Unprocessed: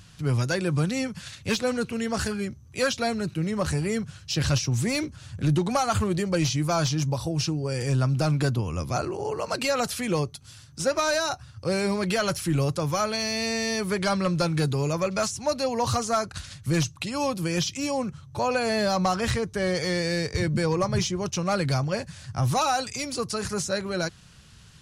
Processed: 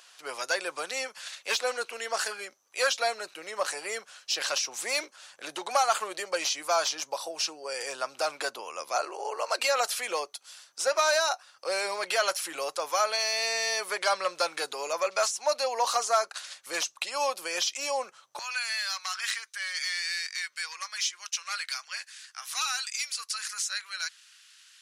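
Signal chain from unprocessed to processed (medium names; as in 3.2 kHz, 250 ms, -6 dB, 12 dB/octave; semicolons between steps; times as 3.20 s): high-pass 560 Hz 24 dB/octave, from 18.39 s 1.5 kHz; trim +1 dB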